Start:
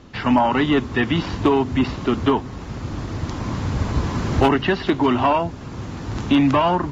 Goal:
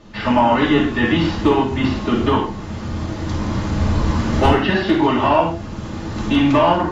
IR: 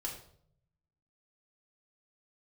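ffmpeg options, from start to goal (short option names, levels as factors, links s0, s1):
-filter_complex "[1:a]atrim=start_sample=2205,atrim=end_sample=4410,asetrate=28224,aresample=44100[s0];[0:a][s0]afir=irnorm=-1:irlink=0"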